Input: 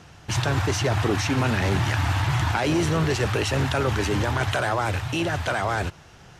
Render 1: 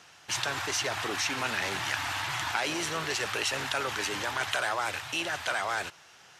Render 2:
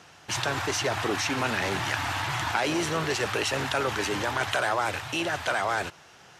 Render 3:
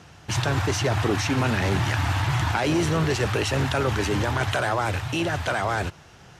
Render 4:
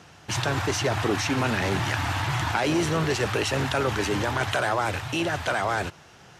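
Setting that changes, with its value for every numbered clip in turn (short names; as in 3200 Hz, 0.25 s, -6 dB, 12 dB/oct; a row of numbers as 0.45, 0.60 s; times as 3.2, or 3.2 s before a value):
HPF, cutoff: 1500, 520, 50, 180 Hz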